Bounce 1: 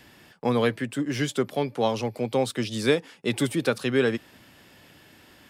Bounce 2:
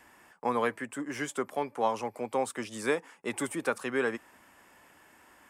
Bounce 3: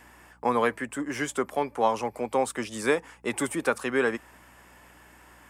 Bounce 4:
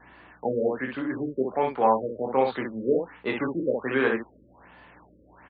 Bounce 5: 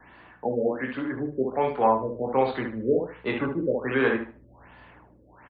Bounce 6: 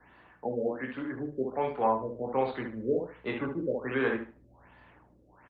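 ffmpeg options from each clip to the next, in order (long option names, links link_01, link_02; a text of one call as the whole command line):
ffmpeg -i in.wav -af "equalizer=frequency=125:width_type=o:width=1:gain=-10,equalizer=frequency=1000:width_type=o:width=1:gain=10,equalizer=frequency=2000:width_type=o:width=1:gain=4,equalizer=frequency=4000:width_type=o:width=1:gain=-10,equalizer=frequency=8000:width_type=o:width=1:gain=8,volume=-8dB" out.wav
ffmpeg -i in.wav -af "aeval=exprs='val(0)+0.000631*(sin(2*PI*60*n/s)+sin(2*PI*2*60*n/s)/2+sin(2*PI*3*60*n/s)/3+sin(2*PI*4*60*n/s)/4+sin(2*PI*5*60*n/s)/5)':channel_layout=same,volume=4.5dB" out.wav
ffmpeg -i in.wav -af "aecho=1:1:23|63:0.596|0.631,afftfilt=real='re*lt(b*sr/1024,560*pow(4800/560,0.5+0.5*sin(2*PI*1.3*pts/sr)))':imag='im*lt(b*sr/1024,560*pow(4800/560,0.5+0.5*sin(2*PI*1.3*pts/sr)))':win_size=1024:overlap=0.75" out.wav
ffmpeg -i in.wav -filter_complex "[0:a]acrossover=split=110|920[link_01][link_02][link_03];[link_01]dynaudnorm=framelen=520:gausssize=5:maxgain=10dB[link_04];[link_04][link_02][link_03]amix=inputs=3:normalize=0,aecho=1:1:75|150|225:0.266|0.0612|0.0141" out.wav
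ffmpeg -i in.wav -af "volume=-5.5dB" -ar 48000 -c:a libopus -b:a 32k out.opus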